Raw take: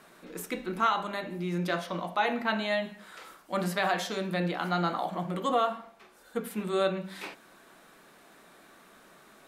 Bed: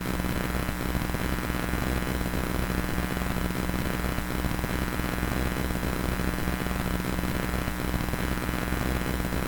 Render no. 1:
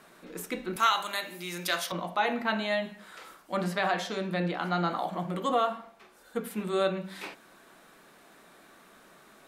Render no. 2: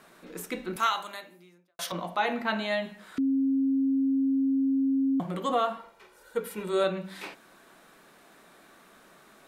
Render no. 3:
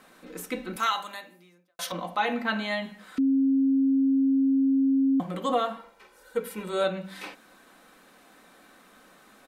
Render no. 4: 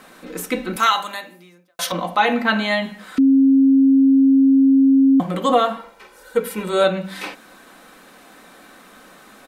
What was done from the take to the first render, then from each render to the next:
0:00.76–0:01.92: spectral tilt +4.5 dB per octave; 0:03.55–0:04.91: high-shelf EQ 8,900 Hz −10 dB
0:00.63–0:01.79: fade out and dull; 0:03.18–0:05.20: beep over 270 Hz −22 dBFS; 0:05.77–0:06.84: comb filter 2.1 ms, depth 58%
comb filter 3.9 ms, depth 42%
level +9.5 dB

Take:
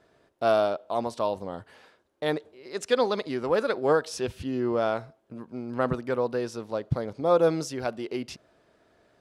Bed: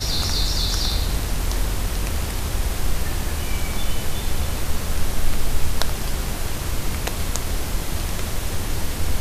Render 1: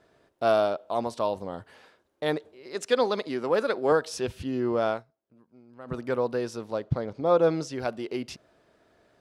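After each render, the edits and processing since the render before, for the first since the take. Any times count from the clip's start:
0:02.75–0:03.92: high-pass filter 150 Hz
0:04.91–0:05.99: duck −18.5 dB, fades 0.13 s
0:06.84–0:07.73: high-frequency loss of the air 63 metres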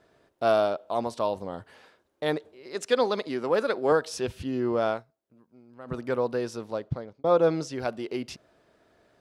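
0:06.52–0:07.24: fade out equal-power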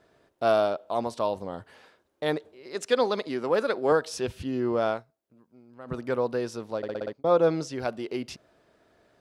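0:06.77: stutter in place 0.06 s, 6 plays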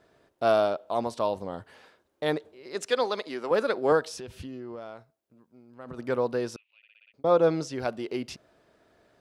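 0:02.90–0:03.51: high-pass filter 470 Hz 6 dB per octave
0:04.03–0:05.99: downward compressor 16 to 1, threshold −35 dBFS
0:06.56–0:07.14: flat-topped band-pass 2,600 Hz, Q 4.9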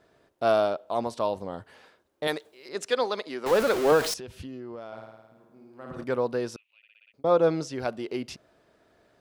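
0:02.27–0:02.69: spectral tilt +3 dB per octave
0:03.46–0:04.14: converter with a step at zero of −25.5 dBFS
0:04.87–0:06.04: flutter between parallel walls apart 9.2 metres, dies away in 1.2 s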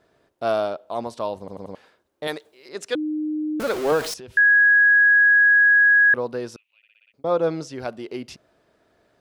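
0:01.39: stutter in place 0.09 s, 4 plays
0:02.95–0:03.60: beep over 306 Hz −22.5 dBFS
0:04.37–0:06.14: beep over 1,660 Hz −11.5 dBFS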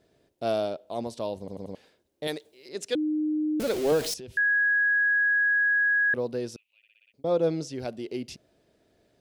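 parametric band 1,200 Hz −12.5 dB 1.4 octaves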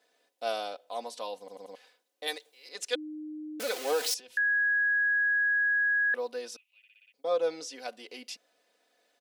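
high-pass filter 750 Hz 12 dB per octave
comb filter 4 ms, depth 72%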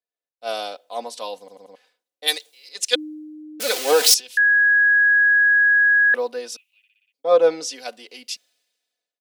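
automatic gain control gain up to 11 dB
multiband upward and downward expander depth 70%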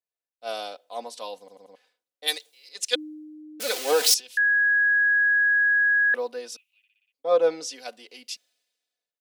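level −5 dB

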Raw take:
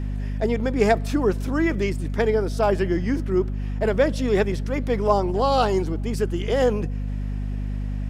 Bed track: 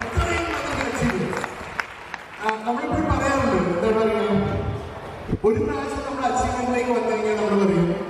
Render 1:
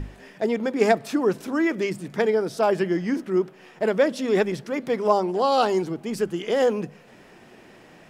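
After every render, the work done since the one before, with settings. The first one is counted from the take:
mains-hum notches 50/100/150/200/250 Hz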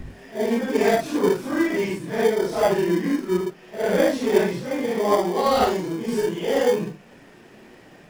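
random phases in long frames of 200 ms
in parallel at −9 dB: decimation without filtering 33×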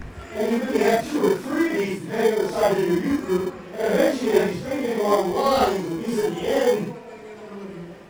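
mix in bed track −17.5 dB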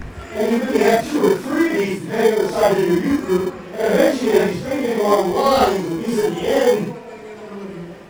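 level +4.5 dB
brickwall limiter −2 dBFS, peak gain reduction 2 dB

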